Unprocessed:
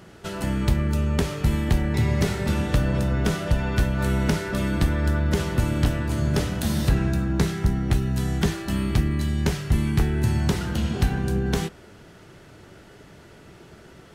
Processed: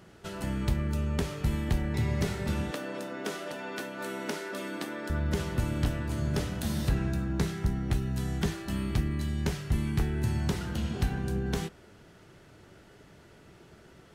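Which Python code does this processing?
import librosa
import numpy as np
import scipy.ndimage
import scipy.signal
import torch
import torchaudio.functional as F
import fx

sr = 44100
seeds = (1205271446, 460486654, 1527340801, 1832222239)

y = fx.highpass(x, sr, hz=260.0, slope=24, at=(2.71, 5.1))
y = F.gain(torch.from_numpy(y), -7.0).numpy()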